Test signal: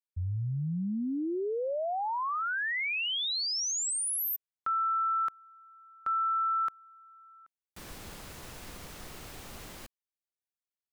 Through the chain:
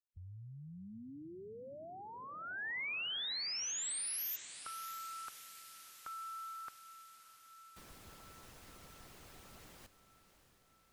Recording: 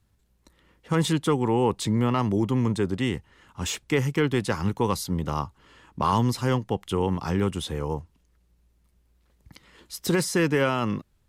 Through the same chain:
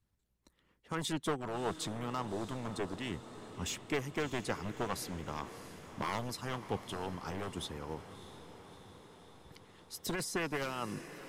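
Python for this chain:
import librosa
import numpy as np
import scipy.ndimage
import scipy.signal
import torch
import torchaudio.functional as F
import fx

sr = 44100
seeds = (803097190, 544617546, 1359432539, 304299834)

y = np.minimum(x, 2.0 * 10.0 ** (-18.5 / 20.0) - x)
y = fx.hpss(y, sr, part='harmonic', gain_db=-10)
y = fx.echo_diffused(y, sr, ms=638, feedback_pct=66, wet_db=-13)
y = F.gain(torch.from_numpy(y), -8.0).numpy()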